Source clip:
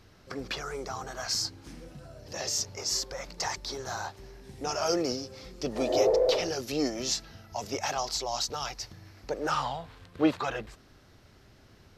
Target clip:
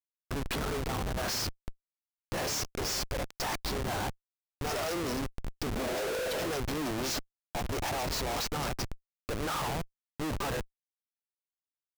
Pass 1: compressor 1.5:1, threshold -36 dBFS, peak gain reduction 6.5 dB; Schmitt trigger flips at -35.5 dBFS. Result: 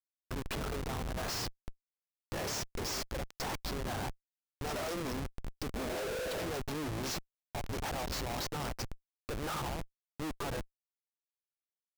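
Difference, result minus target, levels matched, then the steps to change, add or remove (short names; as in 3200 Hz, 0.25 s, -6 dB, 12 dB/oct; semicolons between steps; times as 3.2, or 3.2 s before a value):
compressor: peak gain reduction +6.5 dB
remove: compressor 1.5:1, threshold -36 dBFS, peak gain reduction 6.5 dB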